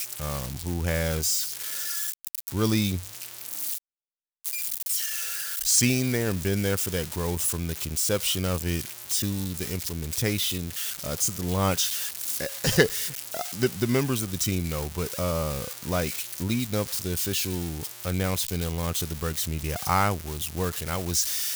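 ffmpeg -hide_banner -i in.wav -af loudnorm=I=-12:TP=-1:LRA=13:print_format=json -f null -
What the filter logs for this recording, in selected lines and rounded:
"input_i" : "-26.9",
"input_tp" : "-8.9",
"input_lra" : "2.8",
"input_thresh" : "-36.9",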